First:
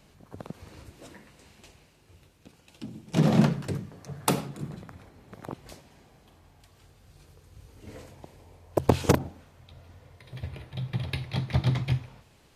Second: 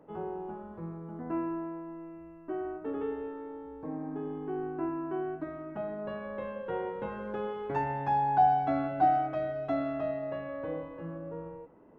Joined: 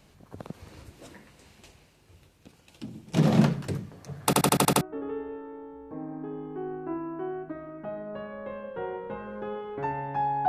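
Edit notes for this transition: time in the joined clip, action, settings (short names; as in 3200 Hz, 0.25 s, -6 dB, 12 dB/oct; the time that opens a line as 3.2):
first
4.25 stutter in place 0.08 s, 7 plays
4.81 switch to second from 2.73 s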